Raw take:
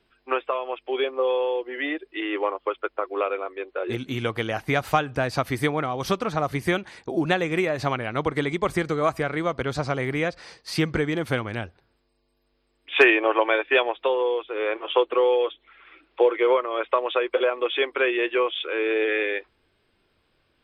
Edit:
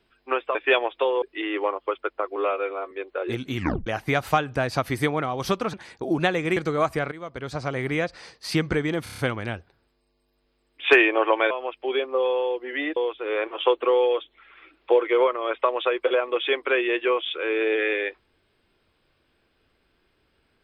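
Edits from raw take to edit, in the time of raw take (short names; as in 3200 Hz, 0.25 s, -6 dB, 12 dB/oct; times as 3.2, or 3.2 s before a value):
0.55–2.01 swap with 13.59–14.26
3.15–3.52 stretch 1.5×
4.17 tape stop 0.30 s
6.34–6.8 cut
7.63–8.8 cut
9.35–10.14 fade in, from -16.5 dB
11.27 stutter 0.03 s, 6 plays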